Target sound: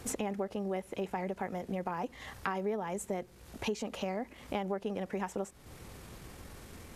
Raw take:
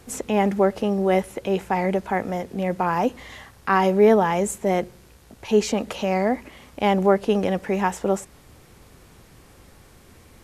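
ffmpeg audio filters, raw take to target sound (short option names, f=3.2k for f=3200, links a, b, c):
-af "atempo=1.5,acompressor=threshold=-35dB:ratio=5,volume=1dB"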